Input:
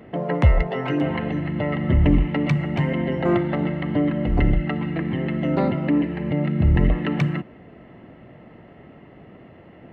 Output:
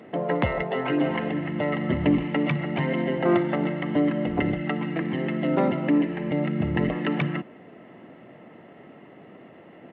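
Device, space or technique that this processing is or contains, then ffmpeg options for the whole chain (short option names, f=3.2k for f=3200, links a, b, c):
Bluetooth headset: -af "highpass=200,aresample=8000,aresample=44100" -ar 32000 -c:a sbc -b:a 64k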